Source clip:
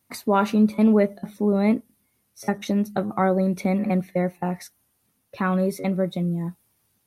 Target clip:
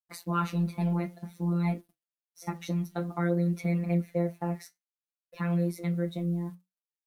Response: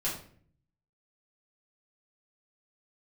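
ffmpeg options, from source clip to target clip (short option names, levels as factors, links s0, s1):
-af "acrusher=bits=8:mix=0:aa=0.5,afftfilt=real='hypot(re,im)*cos(PI*b)':imag='0':win_size=1024:overlap=0.75,flanger=delay=9.9:depth=5.7:regen=-58:speed=0.55:shape=triangular"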